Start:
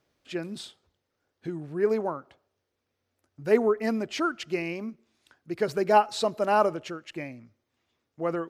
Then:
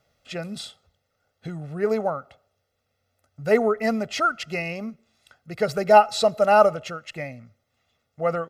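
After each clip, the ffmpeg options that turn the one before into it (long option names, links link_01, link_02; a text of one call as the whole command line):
ffmpeg -i in.wav -af "aecho=1:1:1.5:0.76,volume=3.5dB" out.wav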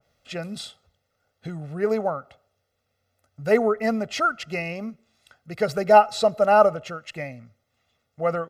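ffmpeg -i in.wav -af "adynamicequalizer=threshold=0.0178:dfrequency=2000:dqfactor=0.7:tfrequency=2000:tqfactor=0.7:attack=5:release=100:ratio=0.375:range=2.5:mode=cutabove:tftype=highshelf" out.wav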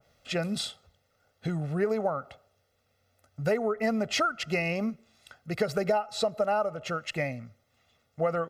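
ffmpeg -i in.wav -af "acompressor=threshold=-26dB:ratio=20,volume=3dB" out.wav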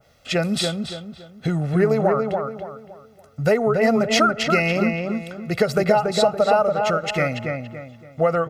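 ffmpeg -i in.wav -filter_complex "[0:a]asplit=2[link_01][link_02];[link_02]adelay=283,lowpass=frequency=2400:poles=1,volume=-4dB,asplit=2[link_03][link_04];[link_04]adelay=283,lowpass=frequency=2400:poles=1,volume=0.36,asplit=2[link_05][link_06];[link_06]adelay=283,lowpass=frequency=2400:poles=1,volume=0.36,asplit=2[link_07][link_08];[link_08]adelay=283,lowpass=frequency=2400:poles=1,volume=0.36,asplit=2[link_09][link_10];[link_10]adelay=283,lowpass=frequency=2400:poles=1,volume=0.36[link_11];[link_01][link_03][link_05][link_07][link_09][link_11]amix=inputs=6:normalize=0,volume=8.5dB" out.wav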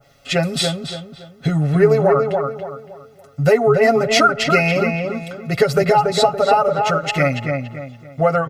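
ffmpeg -i in.wav -af "aecho=1:1:7.2:0.84,volume=1.5dB" out.wav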